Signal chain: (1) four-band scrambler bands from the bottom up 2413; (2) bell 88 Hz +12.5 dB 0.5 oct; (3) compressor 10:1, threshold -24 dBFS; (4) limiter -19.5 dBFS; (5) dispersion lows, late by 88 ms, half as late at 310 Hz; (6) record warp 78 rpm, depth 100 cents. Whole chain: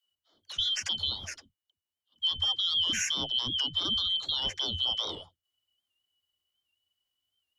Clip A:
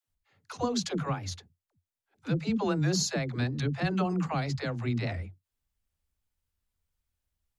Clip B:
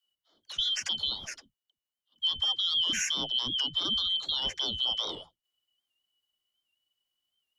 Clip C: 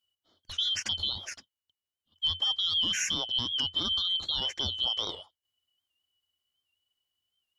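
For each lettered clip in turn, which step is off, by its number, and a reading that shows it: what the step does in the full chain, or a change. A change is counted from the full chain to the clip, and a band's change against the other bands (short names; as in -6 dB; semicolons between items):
1, 4 kHz band -26.0 dB; 2, 125 Hz band -5.5 dB; 5, crest factor change -1.5 dB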